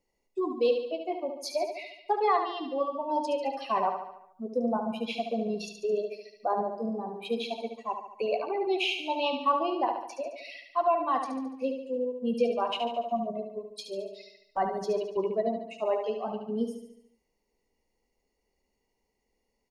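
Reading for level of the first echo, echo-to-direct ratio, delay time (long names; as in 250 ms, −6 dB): −7.0 dB, −5.5 dB, 72 ms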